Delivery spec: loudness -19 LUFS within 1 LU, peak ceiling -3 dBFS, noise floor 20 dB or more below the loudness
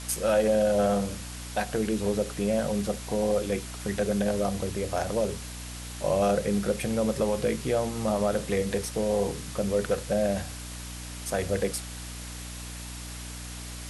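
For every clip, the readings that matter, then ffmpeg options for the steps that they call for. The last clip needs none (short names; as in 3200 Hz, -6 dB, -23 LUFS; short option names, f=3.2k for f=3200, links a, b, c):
hum 60 Hz; harmonics up to 300 Hz; hum level -38 dBFS; noise floor -39 dBFS; noise floor target -49 dBFS; loudness -28.5 LUFS; peak -12.0 dBFS; loudness target -19.0 LUFS
-> -af "bandreject=f=60:t=h:w=6,bandreject=f=120:t=h:w=6,bandreject=f=180:t=h:w=6,bandreject=f=240:t=h:w=6,bandreject=f=300:t=h:w=6"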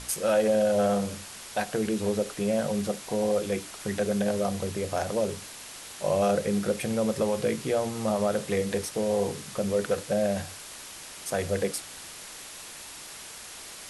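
hum none; noise floor -43 dBFS; noise floor target -48 dBFS
-> -af "afftdn=nr=6:nf=-43"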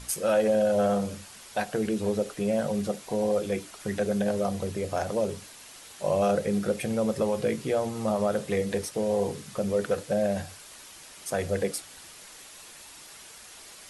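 noise floor -48 dBFS; loudness -28.0 LUFS; peak -13.0 dBFS; loudness target -19.0 LUFS
-> -af "volume=9dB"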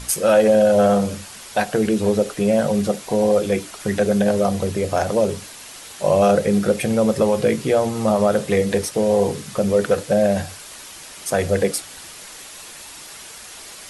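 loudness -19.0 LUFS; peak -4.0 dBFS; noise floor -39 dBFS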